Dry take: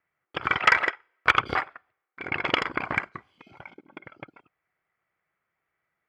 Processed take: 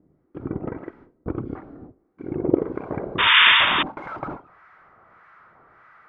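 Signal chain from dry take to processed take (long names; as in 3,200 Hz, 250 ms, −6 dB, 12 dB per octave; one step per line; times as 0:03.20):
converter with a step at zero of −30.5 dBFS
noise gate with hold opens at −30 dBFS
low-pass filter sweep 290 Hz → 1,300 Hz, 0:02.10–0:04.60
sound drawn into the spectrogram noise, 0:03.18–0:03.83, 900–3,700 Hz −19 dBFS
two-band tremolo in antiphase 1.6 Hz, depth 70%, crossover 1,000 Hz
level +6.5 dB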